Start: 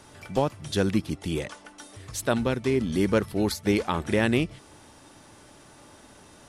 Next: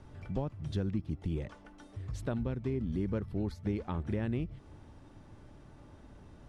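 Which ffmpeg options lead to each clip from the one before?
-af "aemphasis=mode=reproduction:type=riaa,acompressor=threshold=-24dB:ratio=2.5,volume=-9dB"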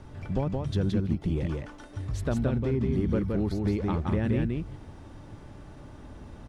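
-filter_complex "[0:a]asplit=2[a][b];[b]asoftclip=type=hard:threshold=-33dB,volume=-11.5dB[c];[a][c]amix=inputs=2:normalize=0,aecho=1:1:171:0.708,volume=4.5dB"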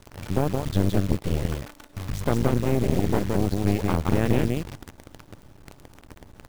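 -af "aeval=exprs='0.224*(cos(1*acos(clip(val(0)/0.224,-1,1)))-cos(1*PI/2))+0.112*(cos(4*acos(clip(val(0)/0.224,-1,1)))-cos(4*PI/2))':c=same,acrusher=bits=7:dc=4:mix=0:aa=0.000001"

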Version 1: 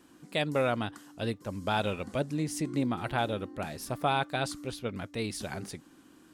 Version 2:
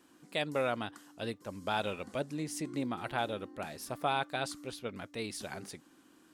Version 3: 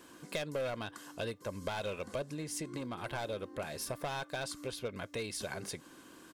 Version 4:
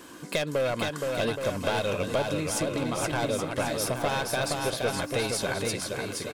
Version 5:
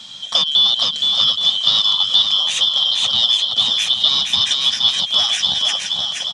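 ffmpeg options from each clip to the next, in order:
-af "lowshelf=f=170:g=-9.5,volume=-3dB"
-af "volume=30dB,asoftclip=hard,volume=-30dB,acompressor=threshold=-46dB:ratio=4,aecho=1:1:1.9:0.36,volume=8.5dB"
-af "aecho=1:1:470|822.5|1087|1285|1434:0.631|0.398|0.251|0.158|0.1,volume=9dB"
-af "afftfilt=real='real(if(lt(b,272),68*(eq(floor(b/68),0)*1+eq(floor(b/68),1)*3+eq(floor(b/68),2)*0+eq(floor(b/68),3)*2)+mod(b,68),b),0)':imag='imag(if(lt(b,272),68*(eq(floor(b/68),0)*1+eq(floor(b/68),1)*3+eq(floor(b/68),2)*0+eq(floor(b/68),3)*2)+mod(b,68),b),0)':win_size=2048:overlap=0.75,aexciter=amount=6.8:drive=4.5:freq=3.6k,highpass=140,equalizer=f=220:t=q:w=4:g=3,equalizer=f=350:t=q:w=4:g=-9,equalizer=f=850:t=q:w=4:g=5,equalizer=f=1.5k:t=q:w=4:g=4,equalizer=f=2.6k:t=q:w=4:g=9,equalizer=f=4.4k:t=q:w=4:g=-10,lowpass=f=4.9k:w=0.5412,lowpass=f=4.9k:w=1.3066,volume=4dB"

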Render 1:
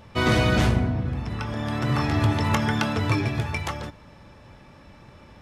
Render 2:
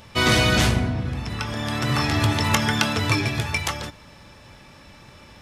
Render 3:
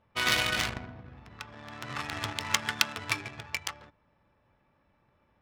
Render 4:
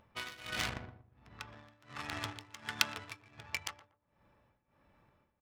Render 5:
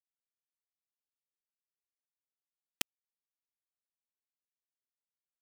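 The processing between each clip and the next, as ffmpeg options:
-af "highshelf=f=2.2k:g=11.5"
-af "aeval=exprs='0.891*(cos(1*acos(clip(val(0)/0.891,-1,1)))-cos(1*PI/2))+0.0708*(cos(7*acos(clip(val(0)/0.891,-1,1)))-cos(7*PI/2))':c=same,adynamicsmooth=sensitivity=2:basefreq=800,tiltshelf=f=790:g=-8.5,volume=-7.5dB"
-filter_complex "[0:a]tremolo=f=1.4:d=0.95,acompressor=mode=upward:threshold=-56dB:ratio=2.5,asplit=2[a][b];[b]adelay=119,lowpass=f=830:p=1,volume=-11dB,asplit=2[c][d];[d]adelay=119,lowpass=f=830:p=1,volume=0.32,asplit=2[e][f];[f]adelay=119,lowpass=f=830:p=1,volume=0.32[g];[a][c][e][g]amix=inputs=4:normalize=0,volume=-4dB"
-af "afftfilt=real='hypot(re,im)*cos(2*PI*random(0))':imag='hypot(re,im)*sin(2*PI*random(1))':win_size=512:overlap=0.75,acrusher=bits=3:mix=0:aa=0.000001,volume=2.5dB"

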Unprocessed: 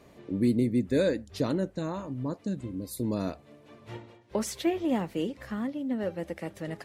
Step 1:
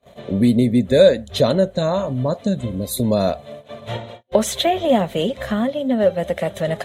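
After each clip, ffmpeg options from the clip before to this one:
-filter_complex "[0:a]agate=range=-33dB:threshold=-53dB:ratio=16:detection=peak,superequalizer=6b=0.316:8b=2.51:13b=2.24:14b=0.501,asplit=2[a][b];[b]acompressor=threshold=-33dB:ratio=6,volume=1.5dB[c];[a][c]amix=inputs=2:normalize=0,volume=7.5dB"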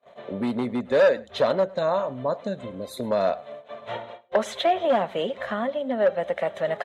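-filter_complex "[0:a]volume=10dB,asoftclip=hard,volume=-10dB,bandpass=f=1.1k:t=q:w=0.79:csg=0,asplit=2[a][b];[b]adelay=105,volume=-22dB,highshelf=f=4k:g=-2.36[c];[a][c]amix=inputs=2:normalize=0"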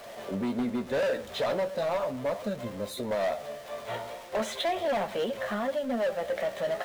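-af "aeval=exprs='val(0)+0.5*0.0158*sgn(val(0))':c=same,flanger=delay=8.4:depth=8.1:regen=45:speed=0.38:shape=triangular,asoftclip=type=hard:threshold=-24.5dB"

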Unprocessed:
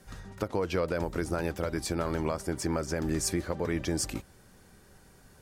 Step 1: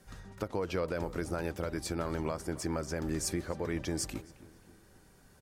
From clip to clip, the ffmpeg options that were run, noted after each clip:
-filter_complex "[0:a]asplit=2[a][b];[b]adelay=268,lowpass=f=2.6k:p=1,volume=-17.5dB,asplit=2[c][d];[d]adelay=268,lowpass=f=2.6k:p=1,volume=0.51,asplit=2[e][f];[f]adelay=268,lowpass=f=2.6k:p=1,volume=0.51,asplit=2[g][h];[h]adelay=268,lowpass=f=2.6k:p=1,volume=0.51[i];[a][c][e][g][i]amix=inputs=5:normalize=0,volume=-4dB"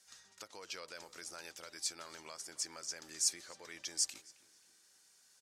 -af "bandpass=f=6.1k:t=q:w=1.3:csg=0,volume=5.5dB"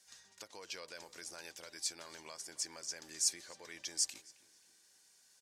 -af "bandreject=f=1.3k:w=7.5"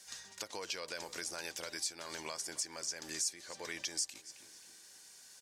-af "acompressor=threshold=-48dB:ratio=3,volume=10dB"

